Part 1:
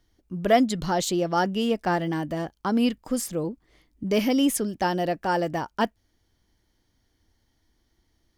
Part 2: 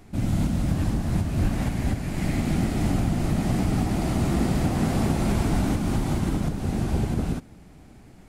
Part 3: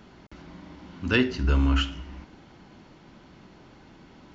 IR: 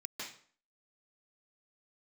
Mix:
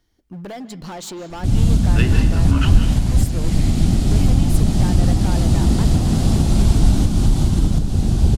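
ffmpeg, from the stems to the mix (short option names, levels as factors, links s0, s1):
-filter_complex "[0:a]acompressor=threshold=0.0501:ratio=16,asoftclip=type=hard:threshold=0.0316,volume=1.06,asplit=3[s0][s1][s2];[s1]volume=0.237[s3];[1:a]aemphasis=mode=reproduction:type=bsi,aexciter=amount=6:drive=4.5:freq=3100,adelay=1300,volume=0.891[s4];[2:a]adelay=850,volume=1.26,asplit=2[s5][s6];[s6]volume=0.422[s7];[s2]apad=whole_len=229042[s8];[s5][s8]sidechaincompress=threshold=0.01:ratio=8:attack=16:release=107[s9];[3:a]atrim=start_sample=2205[s10];[s3][s7]amix=inputs=2:normalize=0[s11];[s11][s10]afir=irnorm=-1:irlink=0[s12];[s0][s4][s9][s12]amix=inputs=4:normalize=0"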